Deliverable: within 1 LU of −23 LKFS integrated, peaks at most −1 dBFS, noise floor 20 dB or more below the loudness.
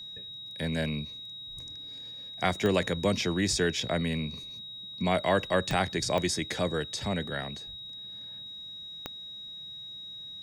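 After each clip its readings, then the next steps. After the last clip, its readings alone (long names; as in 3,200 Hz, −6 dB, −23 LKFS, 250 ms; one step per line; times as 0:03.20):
number of clicks 4; interfering tone 3,800 Hz; level of the tone −40 dBFS; integrated loudness −31.5 LKFS; sample peak −12.5 dBFS; target loudness −23.0 LKFS
→ click removal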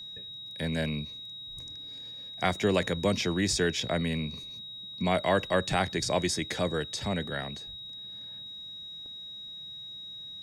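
number of clicks 0; interfering tone 3,800 Hz; level of the tone −40 dBFS
→ notch filter 3,800 Hz, Q 30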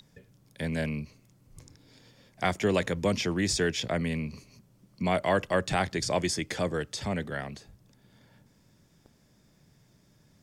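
interfering tone none found; integrated loudness −29.5 LKFS; sample peak −12.5 dBFS; target loudness −23.0 LKFS
→ level +6.5 dB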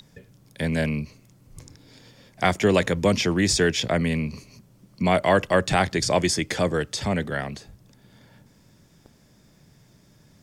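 integrated loudness −23.0 LKFS; sample peak −6.0 dBFS; background noise floor −57 dBFS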